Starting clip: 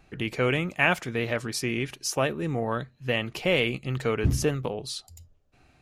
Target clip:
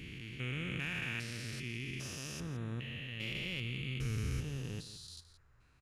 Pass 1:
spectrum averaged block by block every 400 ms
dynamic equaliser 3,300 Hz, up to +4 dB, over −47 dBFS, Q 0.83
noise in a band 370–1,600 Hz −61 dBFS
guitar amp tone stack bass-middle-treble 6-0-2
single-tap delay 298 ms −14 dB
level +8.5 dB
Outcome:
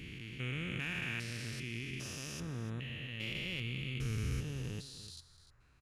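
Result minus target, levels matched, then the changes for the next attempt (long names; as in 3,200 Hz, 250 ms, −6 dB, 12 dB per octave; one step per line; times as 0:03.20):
echo 130 ms late
change: single-tap delay 168 ms −14 dB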